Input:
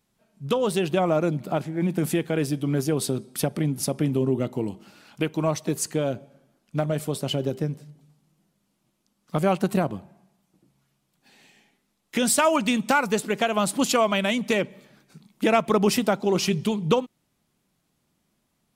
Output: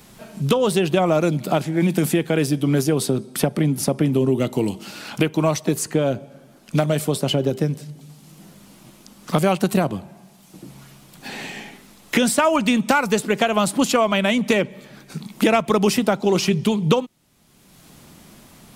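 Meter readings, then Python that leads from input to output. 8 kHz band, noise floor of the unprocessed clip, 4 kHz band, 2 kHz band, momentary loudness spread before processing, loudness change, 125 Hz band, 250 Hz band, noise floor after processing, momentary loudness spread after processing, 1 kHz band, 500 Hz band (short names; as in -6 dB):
+2.5 dB, -73 dBFS, +4.5 dB, +4.5 dB, 10 LU, +4.5 dB, +5.5 dB, +5.0 dB, -50 dBFS, 14 LU, +3.5 dB, +4.0 dB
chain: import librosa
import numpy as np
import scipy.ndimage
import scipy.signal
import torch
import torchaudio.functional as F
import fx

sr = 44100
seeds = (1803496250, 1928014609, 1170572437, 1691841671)

y = fx.band_squash(x, sr, depth_pct=70)
y = F.gain(torch.from_numpy(y), 4.5).numpy()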